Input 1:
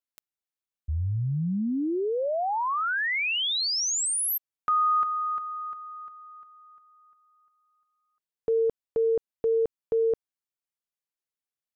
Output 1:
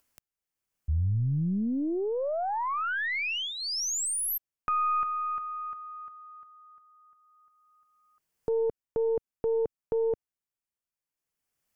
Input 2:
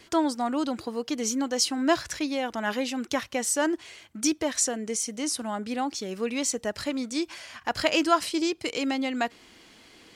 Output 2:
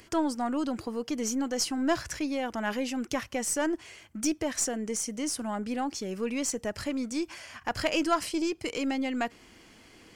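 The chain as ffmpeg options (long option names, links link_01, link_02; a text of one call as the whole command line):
ffmpeg -i in.wav -filter_complex "[0:a]lowshelf=frequency=160:gain=7,asplit=2[link_01][link_02];[link_02]acompressor=threshold=-32dB:ratio=6:attack=6.4:release=21:detection=peak,volume=-3dB[link_03];[link_01][link_03]amix=inputs=2:normalize=0,equalizer=frequency=3800:width=3.9:gain=-8,acompressor=mode=upward:threshold=-50dB:ratio=2.5:attack=2.9:release=914:knee=2.83:detection=peak,aeval=exprs='0.447*(cos(1*acos(clip(val(0)/0.447,-1,1)))-cos(1*PI/2))+0.0316*(cos(6*acos(clip(val(0)/0.447,-1,1)))-cos(6*PI/2))+0.01*(cos(8*acos(clip(val(0)/0.447,-1,1)))-cos(8*PI/2))':channel_layout=same,volume=-6dB" out.wav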